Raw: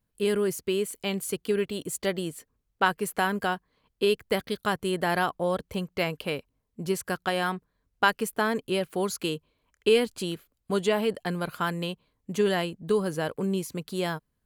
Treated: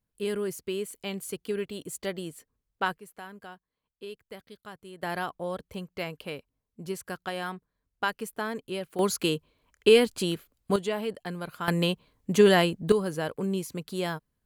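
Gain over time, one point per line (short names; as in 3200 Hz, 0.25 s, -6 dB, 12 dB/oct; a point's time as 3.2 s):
-5 dB
from 2.98 s -17.5 dB
from 5.03 s -6.5 dB
from 8.99 s +3 dB
from 10.76 s -5.5 dB
from 11.68 s +6 dB
from 12.92 s -1.5 dB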